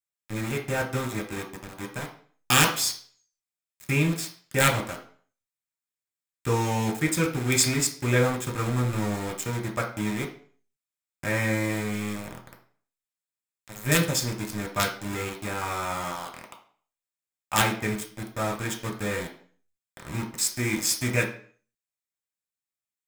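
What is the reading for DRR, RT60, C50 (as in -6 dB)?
0.5 dB, 0.45 s, 9.5 dB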